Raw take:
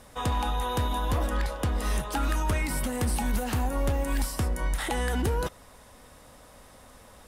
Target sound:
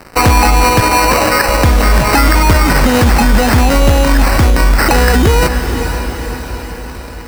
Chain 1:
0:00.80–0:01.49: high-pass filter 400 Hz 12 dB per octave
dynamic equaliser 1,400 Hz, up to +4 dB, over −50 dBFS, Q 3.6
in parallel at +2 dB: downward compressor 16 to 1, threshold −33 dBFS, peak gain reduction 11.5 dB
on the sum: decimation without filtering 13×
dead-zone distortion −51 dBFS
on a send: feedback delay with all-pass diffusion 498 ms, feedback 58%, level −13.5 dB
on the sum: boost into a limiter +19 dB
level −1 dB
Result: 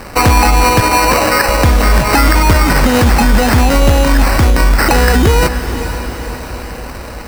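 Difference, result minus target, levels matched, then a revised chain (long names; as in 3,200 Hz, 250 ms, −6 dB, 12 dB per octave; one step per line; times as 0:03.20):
downward compressor: peak gain reduction +8 dB; dead-zone distortion: distortion −5 dB
0:00.80–0:01.49: high-pass filter 400 Hz 12 dB per octave
dynamic equaliser 1,400 Hz, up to +4 dB, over −50 dBFS, Q 3.6
in parallel at +2 dB: downward compressor 16 to 1, threshold −24.5 dBFS, peak gain reduction 3.5 dB
on the sum: decimation without filtering 13×
dead-zone distortion −42.5 dBFS
on a send: feedback delay with all-pass diffusion 498 ms, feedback 58%, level −13.5 dB
on the sum: boost into a limiter +19 dB
level −1 dB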